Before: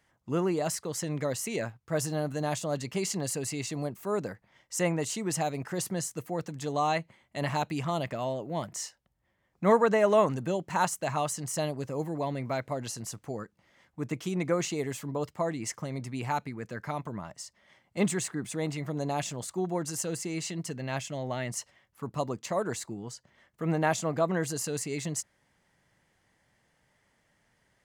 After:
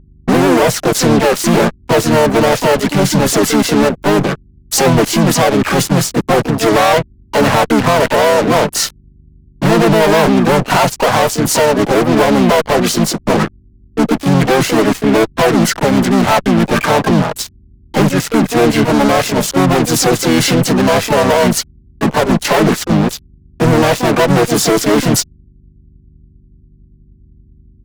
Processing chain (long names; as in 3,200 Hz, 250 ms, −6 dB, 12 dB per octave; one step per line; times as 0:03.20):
Butterworth high-pass 180 Hz 48 dB per octave
noise reduction from a noise print of the clip's start 11 dB
spectral tilt −4.5 dB per octave
downward compressor 2.5 to 1, threshold −37 dBFS, peak gain reduction 16.5 dB
fuzz pedal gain 49 dB, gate −53 dBFS
mains hum 50 Hz, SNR 31 dB
pitch-shifted copies added −5 semitones −1 dB, +7 semitones −5 dB
level +1.5 dB